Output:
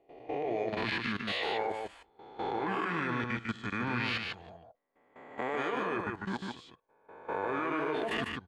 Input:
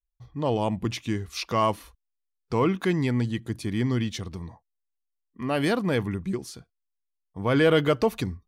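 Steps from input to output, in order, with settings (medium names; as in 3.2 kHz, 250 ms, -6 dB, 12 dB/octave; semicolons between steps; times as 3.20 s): reverse spectral sustain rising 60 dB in 0.71 s; three-band isolator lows -19 dB, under 490 Hz, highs -17 dB, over 4.8 kHz; in parallel at -1.5 dB: peak limiter -22 dBFS, peak gain reduction 10 dB; on the sum: formant shift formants -5 st; level held to a coarse grid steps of 17 dB; on a send: delay 149 ms -4 dB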